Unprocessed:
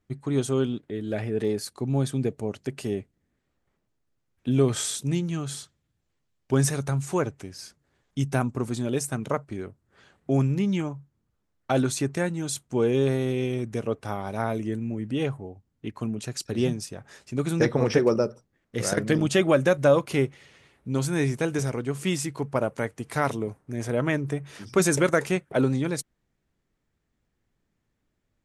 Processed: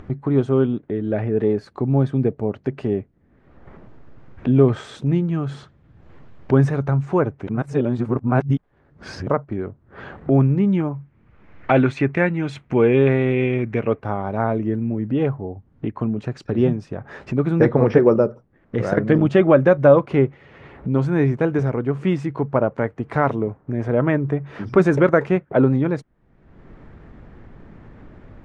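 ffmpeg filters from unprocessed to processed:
-filter_complex "[0:a]asettb=1/sr,asplit=3[a][b][c];[a]atrim=end=10.934[d];[b]atrim=start=10.93:end=14.01,asetpts=PTS-STARTPTS,afade=t=in:d=0.004:c=qsin,afade=t=out:st=3.076:d=0.004:c=qsin,equalizer=f=2.3k:t=o:w=0.96:g=14[e];[c]atrim=start=14.006[f];[d][e]acrossfade=d=0.004:c1=hsin:c2=qsin[g];[g][f]acrossfade=d=0.004:c1=qsin:c2=hsin,asplit=3[h][i][j];[h]atrim=end=7.472[k];[i]atrim=start=7.468:end=9.272,asetpts=PTS-STARTPTS,areverse[l];[j]atrim=start=9.268[m];[k][l]acrossfade=d=0.004:c1=hsin:c2=hsin[n];[n][m]acrossfade=d=0.004:c1=hsin:c2=hsin,lowpass=1.5k,acompressor=mode=upward:threshold=-27dB:ratio=2.5,volume=7dB"

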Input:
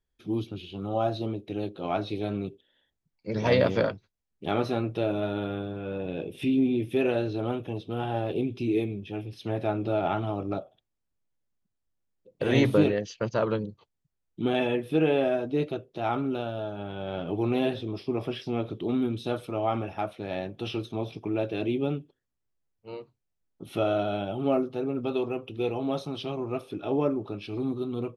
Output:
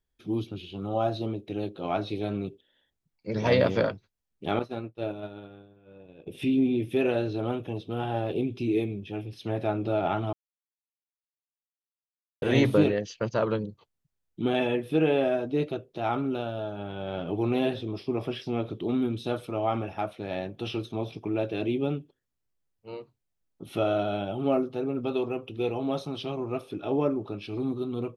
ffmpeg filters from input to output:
-filter_complex "[0:a]asettb=1/sr,asplit=3[a][b][c];[a]atrim=end=4.594[d];[b]atrim=start=4.59:end=6.27,asetpts=PTS-STARTPTS,afade=t=in:d=0.004:c=qsin,afade=t=out:st=1.676:d=0.004:c=qsin,agate=range=-33dB:threshold=-22dB:ratio=3:release=100:detection=peak[e];[c]atrim=start=6.266[f];[d][e]acrossfade=d=0.004:c1=hsin:c2=qsin[g];[g][f]acrossfade=d=0.004:c1=qsin:c2=hsin,asplit=3[h][i][j];[h]atrim=end=10.33,asetpts=PTS-STARTPTS,afade=t=out:st=10.326:d=0.004:c=hsin[k];[i]atrim=start=10.33:end=12.42,asetpts=PTS-STARTPTS,volume=0[l];[j]atrim=start=12.42,asetpts=PTS-STARTPTS,afade=t=in:d=0.004:c=hsin[m];[k][l][m]concat=n=3:v=0:a=1"

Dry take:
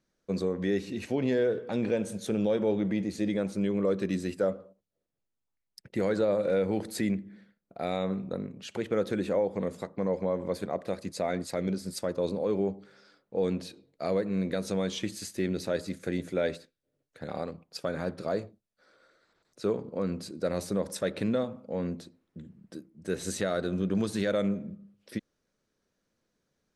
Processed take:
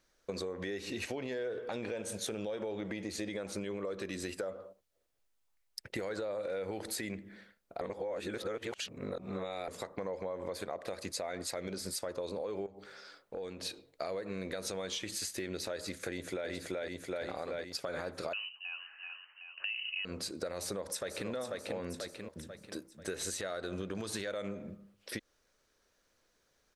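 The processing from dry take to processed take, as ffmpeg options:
-filter_complex "[0:a]asettb=1/sr,asplit=3[a][b][c];[a]atrim=end=12.664[d];[b]atrim=start=12.66:end=13.66,asetpts=PTS-STARTPTS,afade=t=in:d=0.004:c=qsin,afade=t=out:st=0.996:d=0.004:c=qsin,acompressor=threshold=-40dB:ratio=6:attack=3.2:release=140:knee=1:detection=peak[e];[c]atrim=start=13.656[f];[d][e]acrossfade=d=0.004:c1=hsin:c2=qsin[g];[g][f]acrossfade=d=0.004:c1=qsin:c2=hsin,asplit=2[h][i];[i]afade=t=in:st=16.06:d=0.01,afade=t=out:st=16.5:d=0.01,aecho=0:1:380|760|1140|1520|1900|2280|2660|3040|3420:0.944061|0.566437|0.339862|0.203917|0.12235|0.0734102|0.0440461|0.0264277|0.0158566[j];[h][j]amix=inputs=2:normalize=0,asettb=1/sr,asplit=3[k][l][m];[k]atrim=end=18.334[n];[l]atrim=start=18.33:end=20.05,asetpts=PTS-STARTPTS,afade=t=in:d=0.004:c=qsin,afade=t=out:st=1.716:d=0.004:c=qsin,lowpass=f=2.6k:t=q:w=0.5098,lowpass=f=2.6k:t=q:w=0.6013,lowpass=f=2.6k:t=q:w=0.9,lowpass=f=2.6k:t=q:w=2.563,afreqshift=-3100[o];[m]atrim=start=20.046[p];[n][o]acrossfade=d=0.004:c1=hsin:c2=qsin[q];[q][p]acrossfade=d=0.004:c1=qsin:c2=hsin,asplit=2[r][s];[s]afade=t=in:st=20.58:d=0.01,afade=t=out:st=21.3:d=0.01,aecho=0:1:490|980|1470|1960|2450:0.398107|0.159243|0.0636971|0.0254789|0.0101915[t];[r][t]amix=inputs=2:normalize=0,asplit=3[u][v][w];[u]atrim=end=7.812[x];[v]atrim=start=7.808:end=9.682,asetpts=PTS-STARTPTS,areverse[y];[w]atrim=start=9.678[z];[x][y]acrossfade=d=0.004:c1=hsin:c2=hsin[aa];[aa][z]acrossfade=d=0.004:c1=hsin:c2=hsin,equalizer=f=180:w=0.7:g=-14,alimiter=level_in=5dB:limit=-24dB:level=0:latency=1:release=90,volume=-5dB,acompressor=threshold=-43dB:ratio=6,volume=8dB"

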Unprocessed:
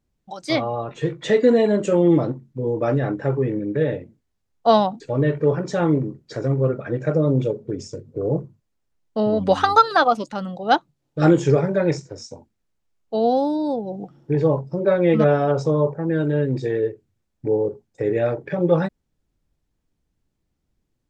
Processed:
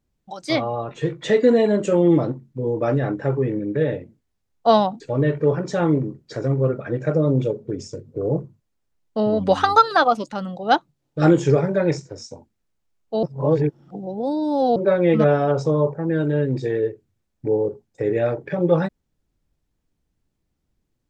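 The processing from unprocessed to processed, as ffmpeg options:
-filter_complex "[0:a]asplit=3[a][b][c];[a]atrim=end=13.232[d];[b]atrim=start=13.228:end=14.762,asetpts=PTS-STARTPTS,areverse[e];[c]atrim=start=14.758[f];[d][e]acrossfade=d=0.004:c1=hsin:c2=hsin[g];[g][f]acrossfade=d=0.004:c1=hsin:c2=hsin"

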